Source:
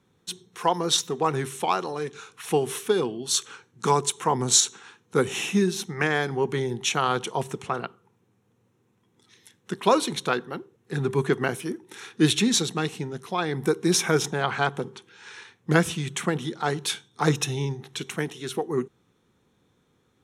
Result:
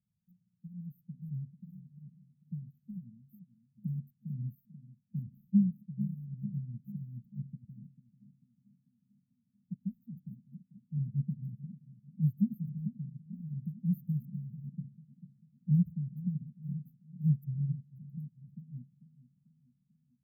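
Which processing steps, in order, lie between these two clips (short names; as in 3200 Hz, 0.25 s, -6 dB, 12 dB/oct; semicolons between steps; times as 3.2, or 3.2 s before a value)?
Wiener smoothing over 25 samples; brick-wall FIR band-stop 230–13000 Hz; on a send: narrowing echo 0.443 s, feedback 83%, band-pass 340 Hz, level -7 dB; on the sum: upward expander 1.5:1, over -50 dBFS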